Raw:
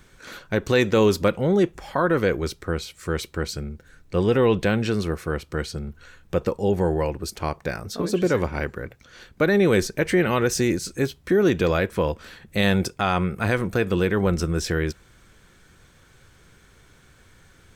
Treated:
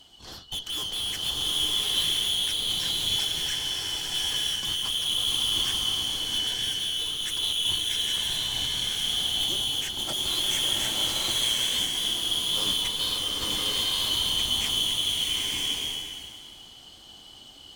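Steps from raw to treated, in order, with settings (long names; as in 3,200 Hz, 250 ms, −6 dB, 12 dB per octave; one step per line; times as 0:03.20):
band-splitting scrambler in four parts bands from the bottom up 2413
tube saturation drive 30 dB, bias 0.4
slow-attack reverb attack 1,030 ms, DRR −5 dB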